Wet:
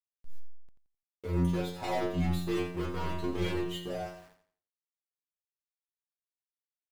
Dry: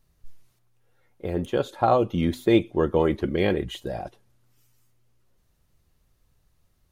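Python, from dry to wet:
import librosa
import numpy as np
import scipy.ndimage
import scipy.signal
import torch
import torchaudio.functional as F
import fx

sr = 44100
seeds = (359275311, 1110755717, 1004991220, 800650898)

y = fx.leveller(x, sr, passes=5)
y = fx.stiff_resonator(y, sr, f0_hz=87.0, decay_s=0.8, stiffness=0.002)
y = np.where(np.abs(y) >= 10.0 ** (-46.5 / 20.0), y, 0.0)
y = fx.echo_feedback(y, sr, ms=86, feedback_pct=32, wet_db=-10)
y = y * 10.0 ** (-7.5 / 20.0)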